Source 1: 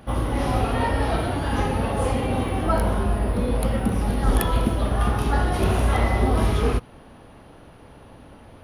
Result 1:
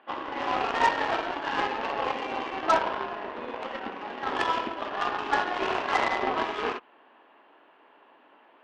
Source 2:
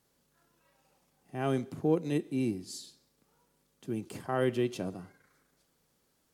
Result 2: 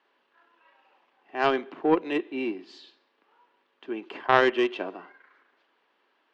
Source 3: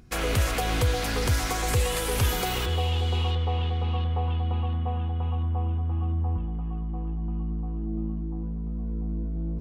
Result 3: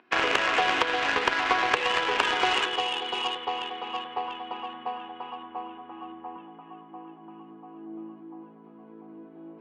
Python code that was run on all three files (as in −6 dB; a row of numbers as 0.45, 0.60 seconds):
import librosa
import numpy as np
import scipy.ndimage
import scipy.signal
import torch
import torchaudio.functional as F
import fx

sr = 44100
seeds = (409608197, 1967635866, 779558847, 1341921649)

y = fx.cabinet(x, sr, low_hz=340.0, low_slope=24, high_hz=3300.0, hz=(500.0, 1000.0, 1700.0, 2800.0), db=(-6, 6, 5, 5))
y = fx.cheby_harmonics(y, sr, harmonics=(7,), levels_db=(-21,), full_scale_db=-10.5)
y = y * 10.0 ** (-30 / 20.0) / np.sqrt(np.mean(np.square(y)))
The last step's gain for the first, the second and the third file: +0.5, +16.0, +9.5 decibels